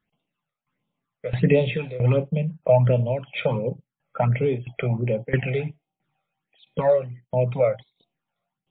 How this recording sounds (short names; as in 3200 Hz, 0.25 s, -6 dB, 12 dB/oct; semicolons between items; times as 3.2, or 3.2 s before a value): phasing stages 12, 1.4 Hz, lowest notch 280–1800 Hz; tremolo saw down 1.5 Hz, depth 90%; MP3